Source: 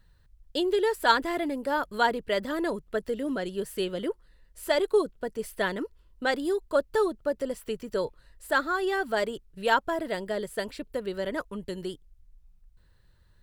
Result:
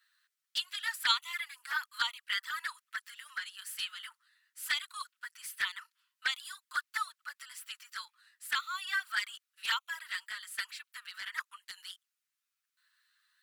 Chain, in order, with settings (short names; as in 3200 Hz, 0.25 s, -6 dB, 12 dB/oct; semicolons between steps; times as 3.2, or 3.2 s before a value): steep high-pass 1200 Hz 48 dB/oct; envelope flanger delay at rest 10.7 ms, full sweep at -28 dBFS; gain +4 dB